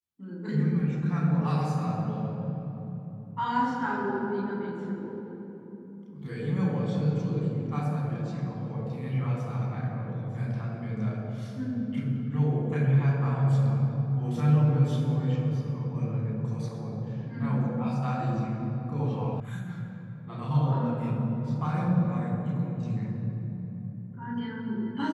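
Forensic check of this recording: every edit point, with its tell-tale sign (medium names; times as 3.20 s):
19.40 s: sound stops dead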